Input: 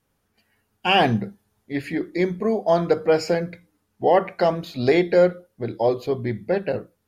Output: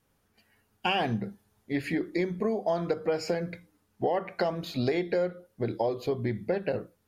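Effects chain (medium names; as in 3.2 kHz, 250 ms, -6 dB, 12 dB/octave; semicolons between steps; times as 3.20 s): compression 6:1, threshold -25 dBFS, peak gain reduction 12.5 dB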